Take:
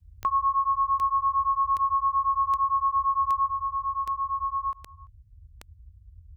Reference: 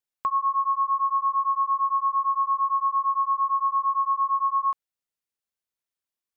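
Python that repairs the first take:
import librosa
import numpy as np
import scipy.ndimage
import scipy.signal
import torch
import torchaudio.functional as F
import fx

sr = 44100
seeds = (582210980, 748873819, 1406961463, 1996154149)

y = fx.fix_declick_ar(x, sr, threshold=10.0)
y = fx.noise_reduce(y, sr, print_start_s=5.06, print_end_s=5.56, reduce_db=30.0)
y = fx.fix_echo_inverse(y, sr, delay_ms=340, level_db=-23.0)
y = fx.fix_level(y, sr, at_s=3.46, step_db=4.5)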